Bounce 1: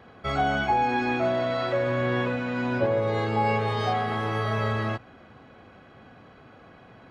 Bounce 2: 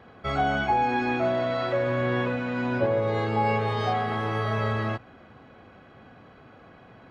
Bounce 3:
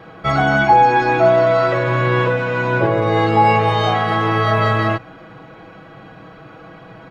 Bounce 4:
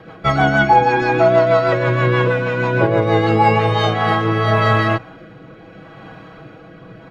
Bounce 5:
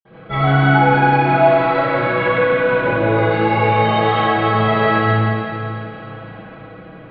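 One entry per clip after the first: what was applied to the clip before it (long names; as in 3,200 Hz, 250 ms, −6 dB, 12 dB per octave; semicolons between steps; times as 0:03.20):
high-shelf EQ 5,200 Hz −5 dB
comb filter 6.2 ms, depth 81%; level +9 dB
rotating-speaker cabinet horn 6.3 Hz, later 0.75 Hz, at 0:03.49; level +3 dB
convolution reverb RT60 3.2 s, pre-delay 47 ms; level −4.5 dB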